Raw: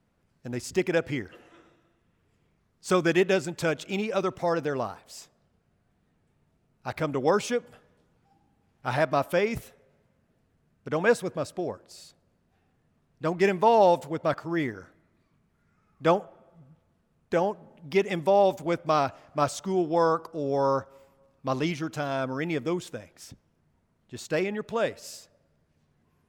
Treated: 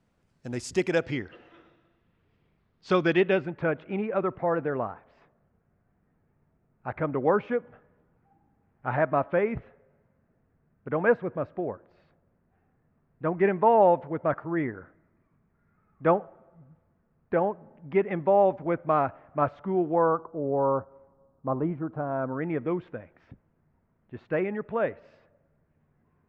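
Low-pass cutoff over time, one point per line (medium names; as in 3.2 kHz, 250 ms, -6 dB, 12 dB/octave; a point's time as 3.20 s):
low-pass 24 dB/octave
0.83 s 10 kHz
1.25 s 4.2 kHz
3.07 s 4.2 kHz
3.63 s 2 kHz
19.87 s 2 kHz
20.28 s 1.2 kHz
22.00 s 1.2 kHz
22.67 s 2.1 kHz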